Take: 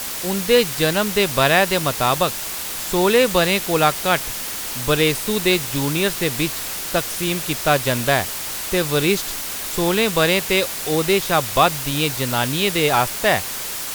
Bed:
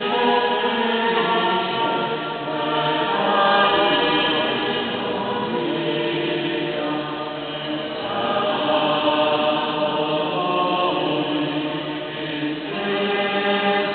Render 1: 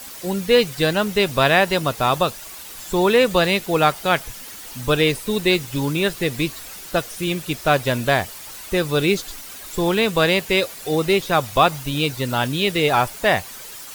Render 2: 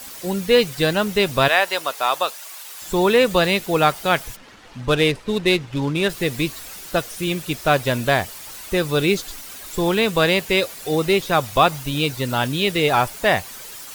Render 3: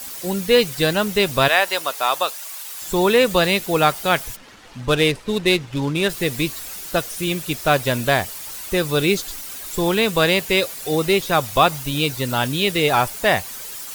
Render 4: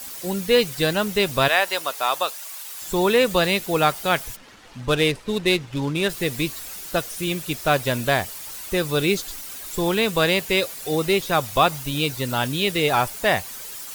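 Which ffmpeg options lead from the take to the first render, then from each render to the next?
ffmpeg -i in.wav -af "afftdn=noise_reduction=11:noise_floor=-28" out.wav
ffmpeg -i in.wav -filter_complex "[0:a]asettb=1/sr,asplit=3[link_01][link_02][link_03];[link_01]atrim=end=1.484[link_04];[link_02]atrim=start=1.48:end=2.82,asetpts=PTS-STARTPTS,afade=type=in:duration=0.004:curve=qsin,afade=type=out:start_time=1.336:duration=0.004:curve=qsin,highpass=620[link_05];[link_03]atrim=start=2.816[link_06];[link_04][link_05]acrossfade=duration=0.004:curve1=hsin:curve2=qsin[link_07];[link_07][link_06]acrossfade=duration=0.004:curve1=qsin:curve2=hsin,asplit=3[link_08][link_09][link_10];[link_08]afade=type=out:start_time=4.35:duration=0.02[link_11];[link_09]adynamicsmooth=sensitivity=5:basefreq=2100,afade=type=in:start_time=4.35:duration=0.02,afade=type=out:start_time=6.08:duration=0.02[link_12];[link_10]afade=type=in:start_time=6.08:duration=0.02[link_13];[link_11][link_12][link_13]amix=inputs=3:normalize=0" out.wav
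ffmpeg -i in.wav -af "highshelf=frequency=5800:gain=5" out.wav
ffmpeg -i in.wav -af "volume=-2.5dB" out.wav

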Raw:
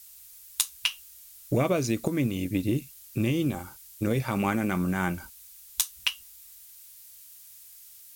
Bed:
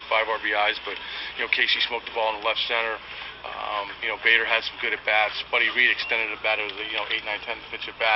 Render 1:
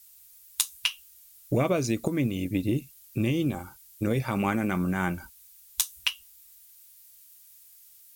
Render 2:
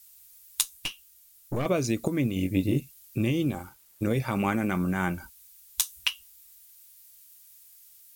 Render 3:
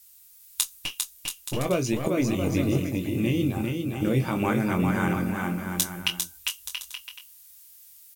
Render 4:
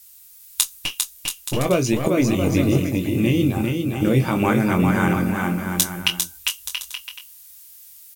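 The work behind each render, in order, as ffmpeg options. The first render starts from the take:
ffmpeg -i in.wav -af "afftdn=noise_reduction=6:noise_floor=-50" out.wav
ffmpeg -i in.wav -filter_complex "[0:a]asettb=1/sr,asplit=3[link_01][link_02][link_03];[link_01]atrim=end=0.634[link_04];[link_02]atrim=start=0.63:end=1.66,asetpts=PTS-STARTPTS,afade=type=in:duration=0.004:curve=qsin,afade=type=out:start_time=1.026:duration=0.004:curve=qsin,aeval=exprs='(tanh(15.8*val(0)+0.6)-tanh(0.6))/15.8':channel_layout=same[link_05];[link_03]atrim=start=1.656[link_06];[link_04][link_05]acrossfade=duration=0.004:curve1=hsin:curve2=qsin[link_07];[link_07][link_06]acrossfade=duration=0.004:curve1=qsin:curve2=hsin,asettb=1/sr,asplit=3[link_08][link_09][link_10];[link_08]atrim=end=2.344[link_11];[link_09]atrim=start=2.34:end=2.8,asetpts=PTS-STARTPTS,afade=type=in:duration=0.004:curve=qsin,afade=type=out:start_time=0.456:duration=0.004:curve=qsin,asplit=2[link_12][link_13];[link_13]adelay=21,volume=-4.5dB[link_14];[link_12][link_14]amix=inputs=2:normalize=0,atrim=end_sample=20286[link_15];[link_10]atrim=start=2.796[link_16];[link_11][link_15]acrossfade=duration=0.004:curve1=hsin:curve2=qsin[link_17];[link_17][link_16]acrossfade=duration=0.004:curve1=qsin:curve2=hsin,asettb=1/sr,asplit=3[link_18][link_19][link_20];[link_18]atrim=end=3.464[link_21];[link_19]atrim=start=3.46:end=4.05,asetpts=PTS-STARTPTS,afade=type=in:duration=0.004:curve=qsin,afade=type=out:start_time=0.586:duration=0.004:curve=qsin,aeval=exprs='sgn(val(0))*max(abs(val(0))-0.00133,0)':channel_layout=same[link_22];[link_20]atrim=start=4.046[link_23];[link_21][link_22]acrossfade=duration=0.004:curve1=hsin:curve2=qsin[link_24];[link_24][link_23]acrossfade=duration=0.004:curve1=qsin:curve2=hsin" out.wav
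ffmpeg -i in.wav -filter_complex "[0:a]asplit=2[link_01][link_02];[link_02]adelay=23,volume=-8dB[link_03];[link_01][link_03]amix=inputs=2:normalize=0,aecho=1:1:400|680|876|1013|1109:0.631|0.398|0.251|0.158|0.1" out.wav
ffmpeg -i in.wav -af "volume=6dB" out.wav

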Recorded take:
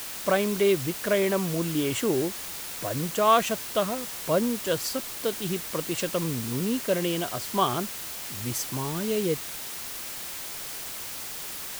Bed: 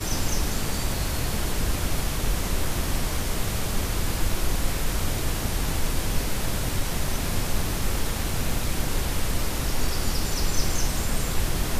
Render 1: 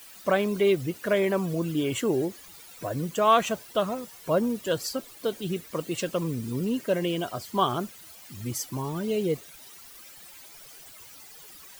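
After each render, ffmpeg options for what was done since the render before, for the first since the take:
ffmpeg -i in.wav -af "afftdn=noise_reduction=15:noise_floor=-37" out.wav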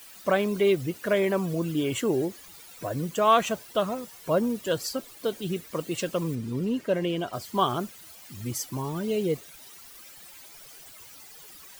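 ffmpeg -i in.wav -filter_complex "[0:a]asettb=1/sr,asplit=3[link_01][link_02][link_03];[link_01]atrim=end=6.354[link_04];[link_02]atrim=start=6.35:end=7.33,asetpts=PTS-STARTPTS,afade=type=in:duration=0.004:curve=qsin,afade=type=out:start_time=0.976:duration=0.004:curve=qsin,highshelf=frequency=6200:gain=-10.5[link_05];[link_03]atrim=start=7.326[link_06];[link_04][link_05]acrossfade=duration=0.004:curve1=hsin:curve2=qsin[link_07];[link_07][link_06]acrossfade=duration=0.004:curve1=qsin:curve2=hsin" out.wav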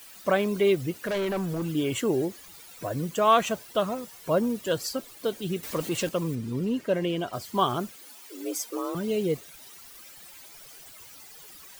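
ffmpeg -i in.wav -filter_complex "[0:a]asettb=1/sr,asplit=3[link_01][link_02][link_03];[link_01]atrim=end=1.074[link_04];[link_02]atrim=start=1.07:end=1.69,asetpts=PTS-STARTPTS,afade=type=in:duration=0.004:curve=qsin,afade=type=out:start_time=0.616:duration=0.004:curve=qsin,volume=25.5dB,asoftclip=hard,volume=-25.5dB[link_05];[link_03]atrim=start=1.686[link_06];[link_04][link_05]acrossfade=duration=0.004:curve1=hsin:curve2=qsin[link_07];[link_07][link_06]acrossfade=duration=0.004:curve1=qsin:curve2=hsin,asettb=1/sr,asplit=3[link_08][link_09][link_10];[link_08]atrim=end=5.634[link_11];[link_09]atrim=start=5.63:end=6.09,asetpts=PTS-STARTPTS,afade=type=in:duration=0.004:curve=qsin,afade=type=out:start_time=0.456:duration=0.004:curve=qsin,aeval=exprs='val(0)+0.5*0.0178*sgn(val(0))':channel_layout=same[link_12];[link_10]atrim=start=6.086[link_13];[link_11][link_12]acrossfade=duration=0.004:curve1=hsin:curve2=qsin[link_14];[link_14][link_13]acrossfade=duration=0.004:curve1=qsin:curve2=hsin,asettb=1/sr,asplit=3[link_15][link_16][link_17];[link_15]atrim=end=7.964[link_18];[link_16]atrim=start=7.96:end=8.95,asetpts=PTS-STARTPTS,afade=type=in:duration=0.004:curve=qsin,afade=type=out:start_time=0.986:duration=0.004:curve=qsin,afreqshift=180[link_19];[link_17]atrim=start=8.946[link_20];[link_18][link_19]acrossfade=duration=0.004:curve1=hsin:curve2=qsin[link_21];[link_21][link_20]acrossfade=duration=0.004:curve1=qsin:curve2=hsin" out.wav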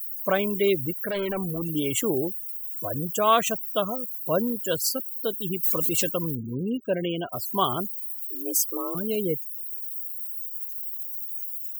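ffmpeg -i in.wav -af "aemphasis=mode=production:type=50fm,afftfilt=real='re*gte(hypot(re,im),0.0282)':imag='im*gte(hypot(re,im),0.0282)':win_size=1024:overlap=0.75" out.wav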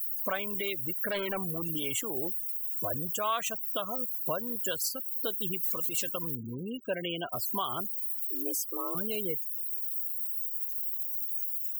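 ffmpeg -i in.wav -filter_complex "[0:a]acrossover=split=740|1700[link_01][link_02][link_03];[link_01]acompressor=threshold=-36dB:ratio=6[link_04];[link_04][link_02][link_03]amix=inputs=3:normalize=0,alimiter=limit=-20.5dB:level=0:latency=1:release=241" out.wav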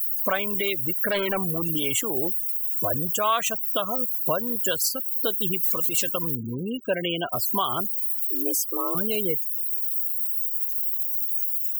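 ffmpeg -i in.wav -af "volume=7.5dB" out.wav

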